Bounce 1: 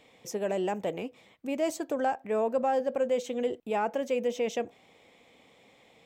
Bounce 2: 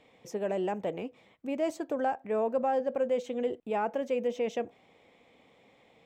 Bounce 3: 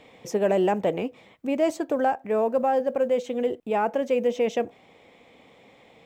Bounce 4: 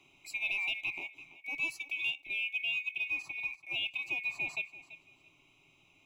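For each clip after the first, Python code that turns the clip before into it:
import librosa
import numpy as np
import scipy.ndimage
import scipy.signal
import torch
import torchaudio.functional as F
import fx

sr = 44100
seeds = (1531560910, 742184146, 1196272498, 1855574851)

y1 = fx.high_shelf(x, sr, hz=4100.0, db=-10.5)
y1 = y1 * 10.0 ** (-1.0 / 20.0)
y2 = fx.rider(y1, sr, range_db=4, speed_s=2.0)
y2 = fx.quant_float(y2, sr, bits=6)
y2 = y2 * 10.0 ** (6.5 / 20.0)
y3 = fx.band_swap(y2, sr, width_hz=2000)
y3 = fx.fixed_phaser(y3, sr, hz=320.0, stages=8)
y3 = fx.echo_feedback(y3, sr, ms=335, feedback_pct=24, wet_db=-16)
y3 = y3 * 10.0 ** (-7.0 / 20.0)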